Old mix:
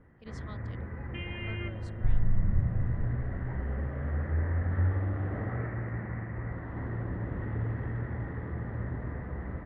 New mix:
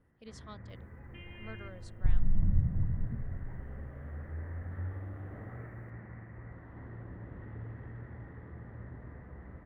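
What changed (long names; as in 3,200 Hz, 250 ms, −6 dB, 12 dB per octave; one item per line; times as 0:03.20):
first sound −11.0 dB
master: add high-shelf EQ 9,600 Hz +10.5 dB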